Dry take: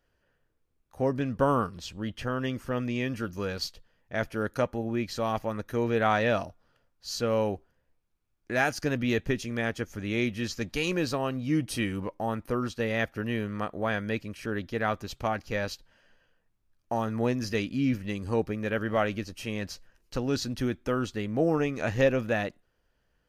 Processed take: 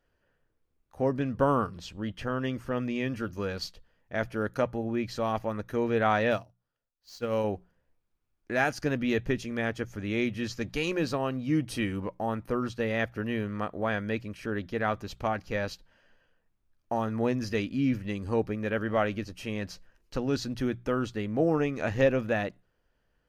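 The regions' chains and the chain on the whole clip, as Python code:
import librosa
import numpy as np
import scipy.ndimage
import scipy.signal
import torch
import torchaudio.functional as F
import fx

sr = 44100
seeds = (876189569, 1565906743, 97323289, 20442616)

y = fx.chain(x, sr, fx.median_filter(points=5),
    fx.high_shelf(hz=4100.0, db=9.5),
    fx.upward_expand(threshold_db=-36.0, expansion=2.5), at=(6.31, 7.44))
y = fx.high_shelf(y, sr, hz=4000.0, db=-6.0)
y = fx.hum_notches(y, sr, base_hz=60, count=3)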